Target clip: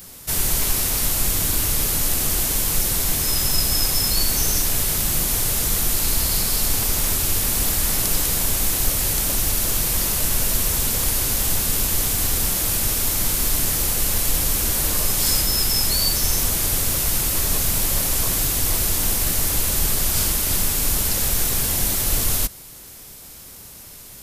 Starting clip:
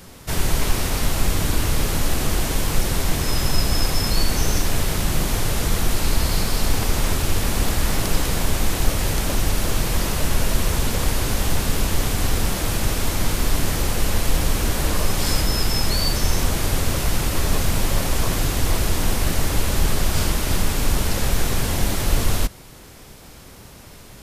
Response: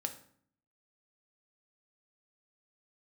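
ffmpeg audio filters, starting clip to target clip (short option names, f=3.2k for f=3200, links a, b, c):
-af "aemphasis=mode=production:type=75kf,volume=-5dB"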